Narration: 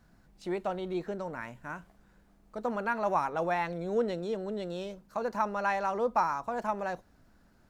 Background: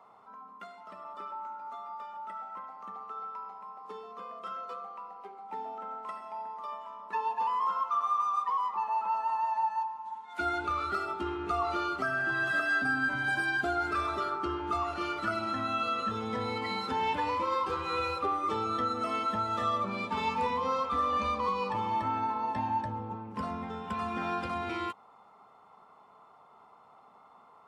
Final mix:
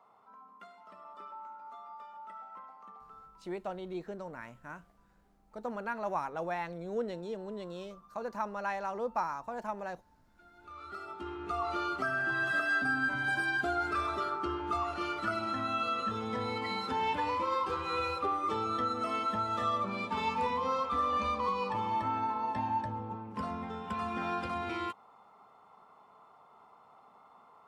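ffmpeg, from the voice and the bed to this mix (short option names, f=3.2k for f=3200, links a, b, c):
-filter_complex "[0:a]adelay=3000,volume=-5.5dB[a];[1:a]volume=22dB,afade=t=out:st=2.69:d=0.81:silence=0.0668344,afade=t=in:st=10.55:d=1.37:silence=0.0398107[b];[a][b]amix=inputs=2:normalize=0"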